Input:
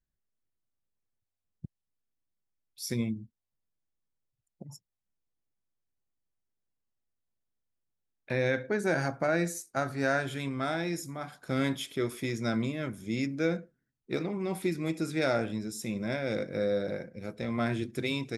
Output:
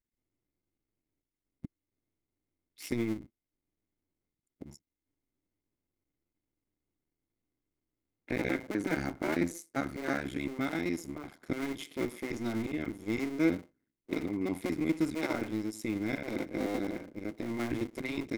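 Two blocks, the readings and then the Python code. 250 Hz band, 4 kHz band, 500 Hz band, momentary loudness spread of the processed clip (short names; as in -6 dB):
0.0 dB, -6.0 dB, -5.5 dB, 10 LU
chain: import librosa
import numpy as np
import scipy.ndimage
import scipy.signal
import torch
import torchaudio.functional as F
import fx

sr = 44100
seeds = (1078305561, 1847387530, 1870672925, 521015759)

y = fx.cycle_switch(x, sr, every=2, mode='muted')
y = fx.dynamic_eq(y, sr, hz=460.0, q=1.1, threshold_db=-40.0, ratio=4.0, max_db=-4)
y = fx.small_body(y, sr, hz=(300.0, 2100.0), ring_ms=25, db=13)
y = y * librosa.db_to_amplitude(-4.0)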